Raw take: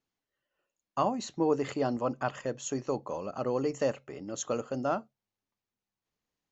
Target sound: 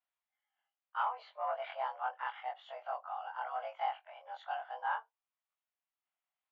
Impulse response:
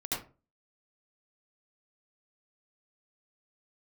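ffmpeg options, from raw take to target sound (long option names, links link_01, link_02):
-af "afftfilt=real='re':imag='-im':win_size=2048:overlap=0.75,asoftclip=type=tanh:threshold=-20dB,highpass=frequency=440:width_type=q:width=0.5412,highpass=frequency=440:width_type=q:width=1.307,lowpass=frequency=3200:width_type=q:width=0.5176,lowpass=frequency=3200:width_type=q:width=0.7071,lowpass=frequency=3200:width_type=q:width=1.932,afreqshift=240"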